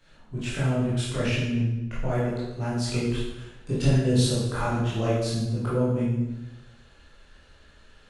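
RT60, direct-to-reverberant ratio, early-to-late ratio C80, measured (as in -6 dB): 1.0 s, -10.0 dB, 3.0 dB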